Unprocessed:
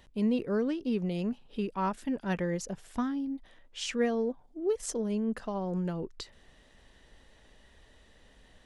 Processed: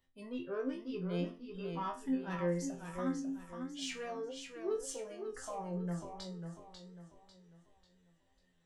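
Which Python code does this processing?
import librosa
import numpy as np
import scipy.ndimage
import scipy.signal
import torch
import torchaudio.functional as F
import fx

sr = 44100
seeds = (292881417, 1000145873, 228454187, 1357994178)

y = fx.noise_reduce_blind(x, sr, reduce_db=14)
y = 10.0 ** (-24.0 / 20.0) * np.tanh(y / 10.0 ** (-24.0 / 20.0))
y = fx.resonator_bank(y, sr, root=41, chord='fifth', decay_s=0.3)
y = fx.echo_warbled(y, sr, ms=545, feedback_pct=38, rate_hz=2.8, cents=86, wet_db=-7)
y = y * 10.0 ** (6.0 / 20.0)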